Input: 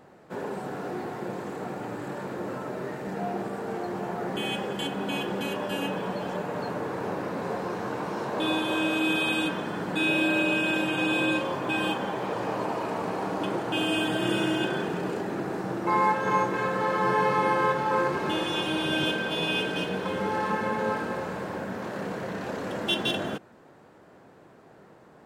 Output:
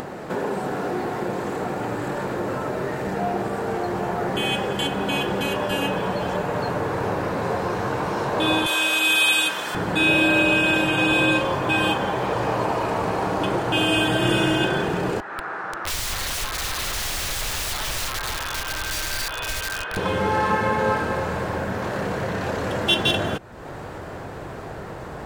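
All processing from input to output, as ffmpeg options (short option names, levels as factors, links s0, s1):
-filter_complex "[0:a]asettb=1/sr,asplit=3[s0][s1][s2];[s0]atrim=end=8.664[s3];[s1]atrim=start=8.66:end=9.75,asetpts=PTS-STARTPTS,afade=t=in:d=0.004:c=qsin,afade=t=out:st=1.086:d=0.004:c=qsin,highpass=f=1100:p=1,highshelf=f=4300:g=11.5[s4];[s2]atrim=start=9.746[s5];[s3][s4]acrossfade=d=0.004:c1=hsin:c2=qsin[s6];[s6][s5]acrossfade=d=0.004:c1=qsin:c2=hsin,asettb=1/sr,asplit=3[s7][s8][s9];[s7]atrim=end=15.204[s10];[s8]atrim=start=15.2:end=19.97,asetpts=PTS-STARTPTS,afade=t=in:d=0.004:c=qsin,afade=t=out:st=4.766:d=0.004:c=qsin,bandpass=f=1400:t=q:w=2.5,aeval=exprs='(mod(39.8*val(0)+1,2)-1)/39.8':c=same[s11];[s9]atrim=start=19.966[s12];[s10][s11]acrossfade=d=0.004:c1=hsin:c2=qsin[s13];[s13][s12]acrossfade=d=0.004:c1=qsin:c2=hsin,asubboost=boost=7:cutoff=78,acompressor=mode=upward:threshold=0.0316:ratio=2.5,volume=2.37"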